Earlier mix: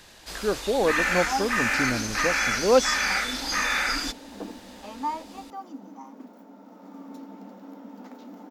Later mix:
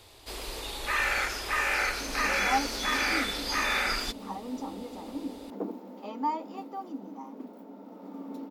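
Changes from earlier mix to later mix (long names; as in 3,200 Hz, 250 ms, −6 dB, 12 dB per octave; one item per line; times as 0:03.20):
speech: muted
second sound: entry +1.20 s
master: add graphic EQ with 15 bands 100 Hz +4 dB, 400 Hz +6 dB, 1,600 Hz −5 dB, 6,300 Hz −7 dB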